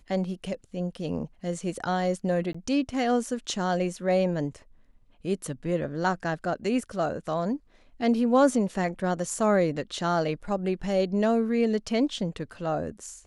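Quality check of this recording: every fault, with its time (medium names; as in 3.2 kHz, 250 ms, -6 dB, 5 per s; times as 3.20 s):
2.53–2.54 s: dropout 15 ms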